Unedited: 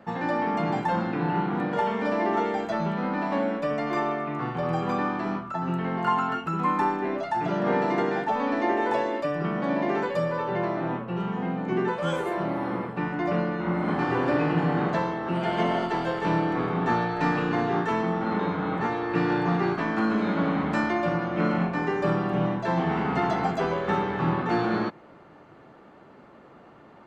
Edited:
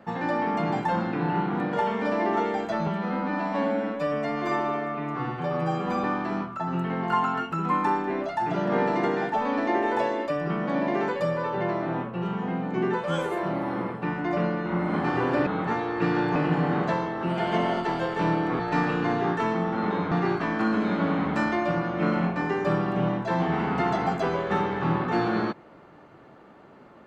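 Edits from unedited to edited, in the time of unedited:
0:02.87–0:04.98: time-stretch 1.5×
0:16.65–0:17.08: remove
0:18.60–0:19.49: move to 0:14.41

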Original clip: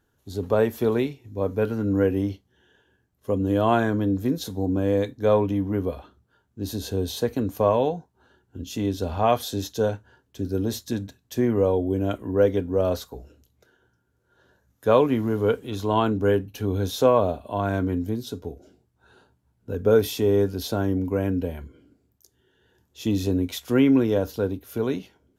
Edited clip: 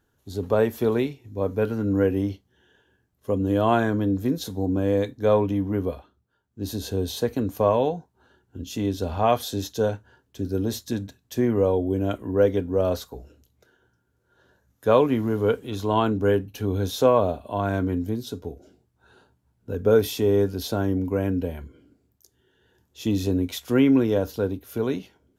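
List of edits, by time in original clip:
0:05.92–0:06.63: duck −8 dB, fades 0.13 s

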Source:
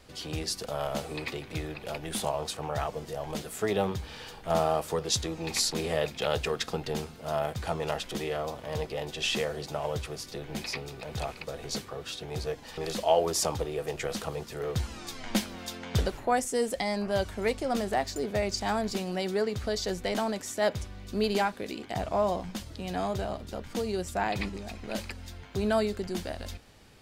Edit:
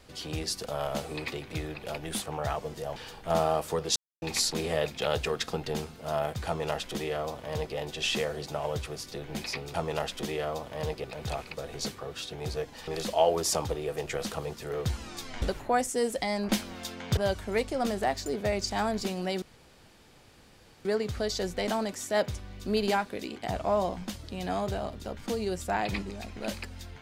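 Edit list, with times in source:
0:02.22–0:02.53: remove
0:03.27–0:04.16: remove
0:05.16–0:05.42: silence
0:07.66–0:08.96: duplicate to 0:10.94
0:15.32–0:16.00: move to 0:17.07
0:19.32: splice in room tone 1.43 s

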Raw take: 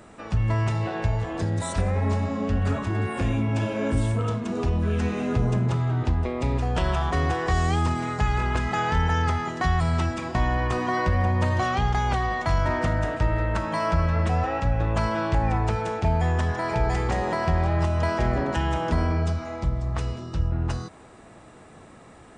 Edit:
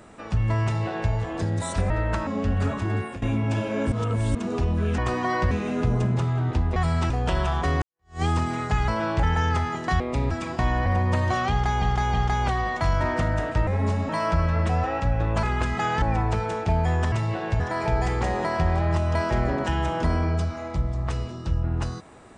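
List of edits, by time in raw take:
0:00.64–0:01.12: duplicate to 0:16.48
0:01.90–0:02.32: swap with 0:13.32–0:13.69
0:03.02–0:03.27: fade out, to −18 dB
0:03.97–0:04.40: reverse
0:06.28–0:06.59: swap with 0:09.73–0:10.07
0:07.31–0:07.71: fade in exponential
0:08.37–0:08.96: swap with 0:15.03–0:15.38
0:10.62–0:11.15: move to 0:05.03
0:11.79–0:12.11: repeat, 3 plays

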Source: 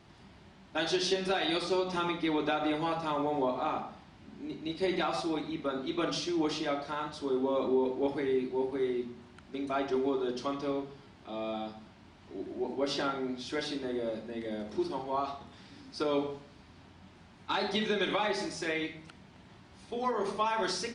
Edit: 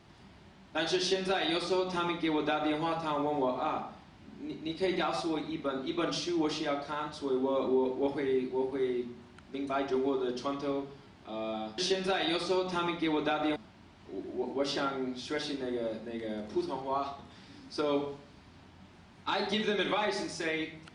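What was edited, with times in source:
0:00.99–0:02.77: duplicate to 0:11.78

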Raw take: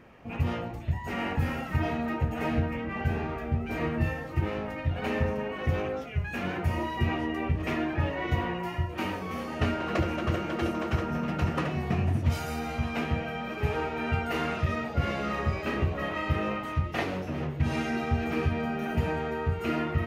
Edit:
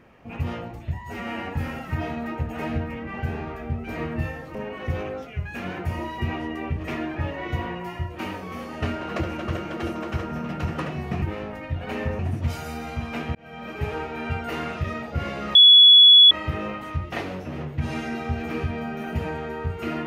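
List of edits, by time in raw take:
0:01.01–0:01.37: time-stretch 1.5×
0:04.37–0:05.34: move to 0:12.01
0:13.17–0:13.51: fade in
0:15.37–0:16.13: beep over 3,390 Hz −7.5 dBFS

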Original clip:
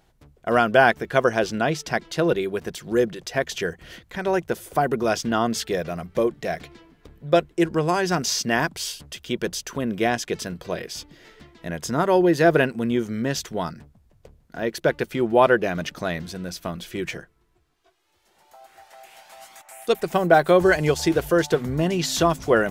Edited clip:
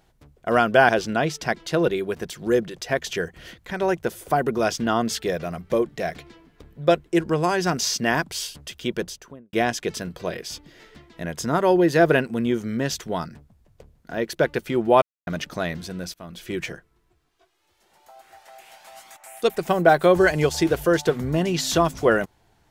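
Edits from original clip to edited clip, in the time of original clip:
0:00.89–0:01.34: remove
0:09.34–0:09.98: fade out and dull
0:15.47–0:15.72: silence
0:16.59–0:16.95: fade in, from −21.5 dB

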